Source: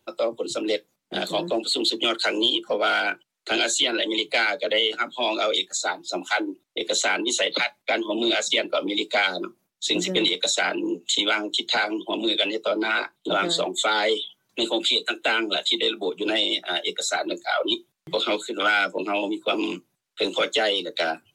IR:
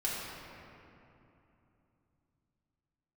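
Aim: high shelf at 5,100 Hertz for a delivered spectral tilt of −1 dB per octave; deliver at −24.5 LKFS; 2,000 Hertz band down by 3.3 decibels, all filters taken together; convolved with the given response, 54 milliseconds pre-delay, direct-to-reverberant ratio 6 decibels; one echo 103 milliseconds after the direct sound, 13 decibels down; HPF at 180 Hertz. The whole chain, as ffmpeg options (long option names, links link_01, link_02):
-filter_complex "[0:a]highpass=180,equalizer=frequency=2000:width_type=o:gain=-5.5,highshelf=frequency=5100:gain=4.5,aecho=1:1:103:0.224,asplit=2[link_01][link_02];[1:a]atrim=start_sample=2205,adelay=54[link_03];[link_02][link_03]afir=irnorm=-1:irlink=0,volume=-12dB[link_04];[link_01][link_04]amix=inputs=2:normalize=0,volume=-1.5dB"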